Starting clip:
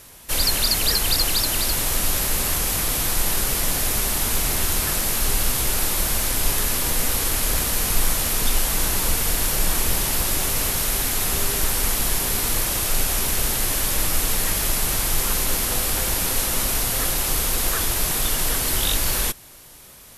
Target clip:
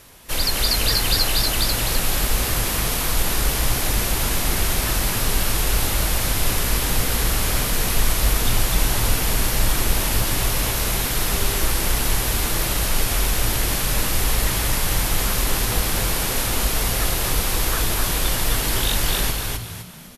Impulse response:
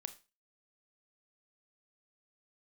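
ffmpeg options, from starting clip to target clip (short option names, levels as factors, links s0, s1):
-filter_complex "[0:a]asplit=6[s0][s1][s2][s3][s4][s5];[s1]adelay=255,afreqshift=-65,volume=0.708[s6];[s2]adelay=510,afreqshift=-130,volume=0.254[s7];[s3]adelay=765,afreqshift=-195,volume=0.0923[s8];[s4]adelay=1020,afreqshift=-260,volume=0.0331[s9];[s5]adelay=1275,afreqshift=-325,volume=0.0119[s10];[s0][s6][s7][s8][s9][s10]amix=inputs=6:normalize=0,asplit=2[s11][s12];[1:a]atrim=start_sample=2205,lowpass=6100[s13];[s12][s13]afir=irnorm=-1:irlink=0,volume=0.891[s14];[s11][s14]amix=inputs=2:normalize=0,volume=0.668"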